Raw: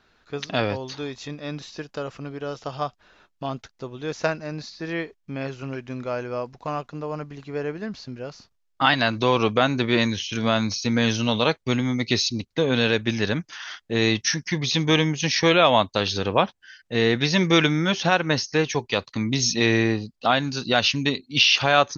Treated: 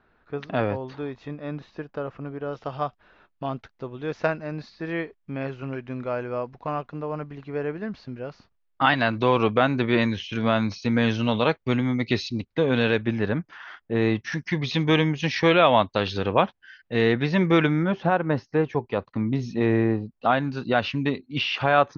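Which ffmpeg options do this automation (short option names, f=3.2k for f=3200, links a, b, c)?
-af "asetnsamples=n=441:p=0,asendcmd='2.53 lowpass f 2600;13.07 lowpass f 1600;14.32 lowpass f 2800;17.13 lowpass f 1900;17.83 lowpass f 1200;20.12 lowpass f 1800',lowpass=1.7k"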